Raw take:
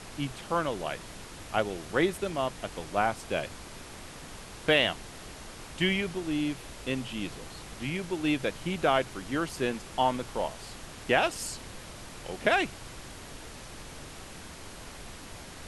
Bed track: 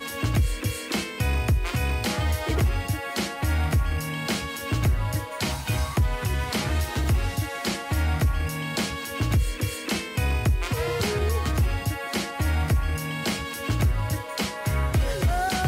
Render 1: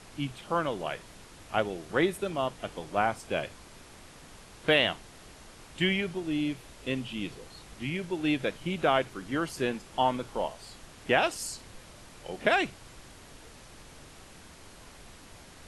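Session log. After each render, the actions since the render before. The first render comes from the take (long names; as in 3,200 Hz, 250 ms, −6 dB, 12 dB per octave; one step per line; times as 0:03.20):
noise reduction from a noise print 6 dB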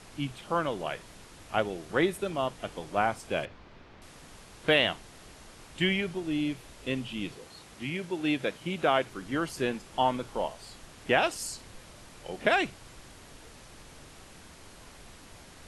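0:03.45–0:04.02: high-frequency loss of the air 240 metres
0:07.32–0:09.08: high-pass filter 130 Hz 6 dB per octave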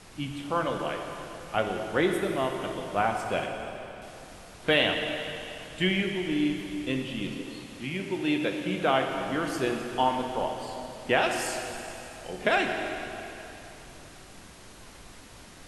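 dense smooth reverb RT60 3.2 s, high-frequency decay 0.9×, DRR 2.5 dB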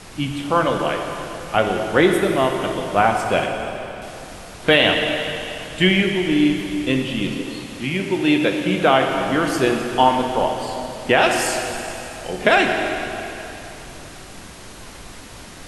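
level +10 dB
brickwall limiter −2 dBFS, peak gain reduction 3 dB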